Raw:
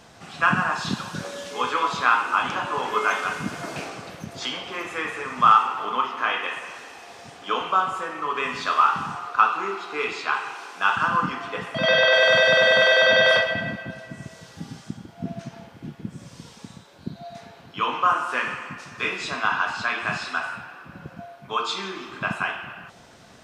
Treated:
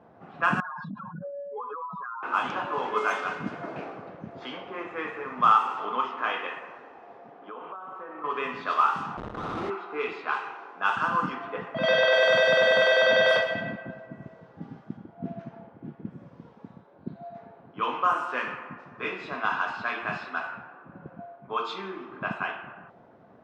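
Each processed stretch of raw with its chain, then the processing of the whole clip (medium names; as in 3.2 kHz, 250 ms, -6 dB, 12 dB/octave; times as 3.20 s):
0.60–2.23 s: spectral contrast enhancement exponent 3.2 + high-order bell 7 kHz +8.5 dB 1 oct + compression, threshold -29 dBFS
7.18–8.24 s: high-pass 200 Hz + compression 12:1, threshold -31 dBFS + treble shelf 6.8 kHz -9 dB
9.17–9.70 s: compression 16:1, threshold -22 dBFS + Schmitt trigger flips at -28 dBFS + flutter echo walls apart 10.8 m, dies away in 0.71 s
whole clip: level-controlled noise filter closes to 1.1 kHz, open at -16 dBFS; high-pass 340 Hz 6 dB/octave; tilt shelf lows +5 dB, about 920 Hz; trim -2.5 dB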